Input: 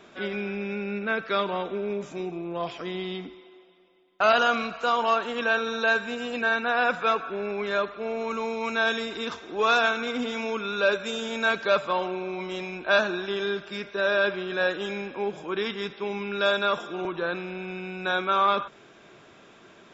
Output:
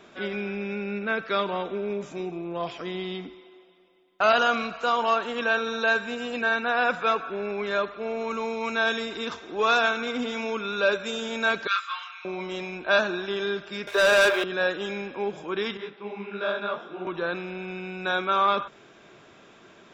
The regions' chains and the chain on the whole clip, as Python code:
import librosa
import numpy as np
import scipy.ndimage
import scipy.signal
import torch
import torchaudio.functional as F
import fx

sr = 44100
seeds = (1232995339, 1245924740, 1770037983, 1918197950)

y = fx.chain(x, sr, fx.ellip_highpass(hz=1200.0, order=4, stop_db=70),
    fx.doubler(ms=26.0, db=-3.5), at=(11.67, 12.25))
y = fx.chain(y, sr, fx.highpass(hz=420.0, slope=24),
    fx.leveller(passes=3), at=(13.87, 14.44))
y = fx.chain(y, sr, fx.highpass(hz=130.0, slope=12),
    fx.air_absorb(metres=240.0),
    fx.detune_double(cents=59), at=(15.77, 17.07))